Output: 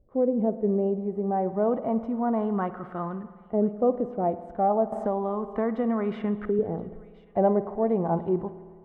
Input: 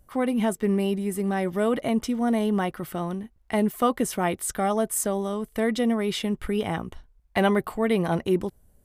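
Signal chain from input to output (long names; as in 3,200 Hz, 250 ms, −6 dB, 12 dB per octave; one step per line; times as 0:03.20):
auto-filter low-pass saw up 0.31 Hz 460–1,500 Hz
harmonic and percussive parts rebalanced harmonic +4 dB
on a send: delay with a high-pass on its return 1,025 ms, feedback 37%, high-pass 2,200 Hz, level −16.5 dB
on the sum: spring reverb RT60 1.7 s, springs 53 ms, chirp 60 ms, DRR 12.5 dB
0:04.92–0:06.59: multiband upward and downward compressor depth 70%
level −7.5 dB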